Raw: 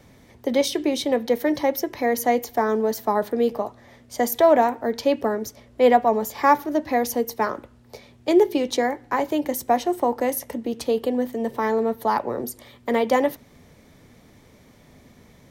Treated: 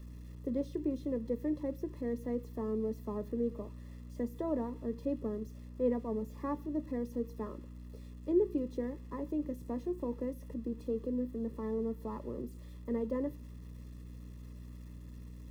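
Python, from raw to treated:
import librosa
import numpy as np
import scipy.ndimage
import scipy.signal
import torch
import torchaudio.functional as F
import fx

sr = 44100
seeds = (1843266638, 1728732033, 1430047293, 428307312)

y = x + 0.5 * 10.0 ** (-19.0 / 20.0) * np.diff(np.sign(x), prepend=np.sign(x[:1]))
y = fx.add_hum(y, sr, base_hz=60, snr_db=17)
y = np.convolve(y, np.full(58, 1.0 / 58))[:len(y)]
y = y * librosa.db_to_amplitude(-8.0)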